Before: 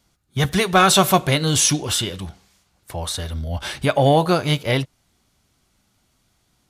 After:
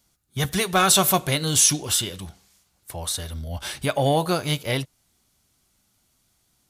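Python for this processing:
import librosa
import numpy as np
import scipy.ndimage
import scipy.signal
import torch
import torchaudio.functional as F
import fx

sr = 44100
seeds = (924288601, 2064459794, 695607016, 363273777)

y = fx.high_shelf(x, sr, hz=6300.0, db=11.5)
y = y * 10.0 ** (-5.5 / 20.0)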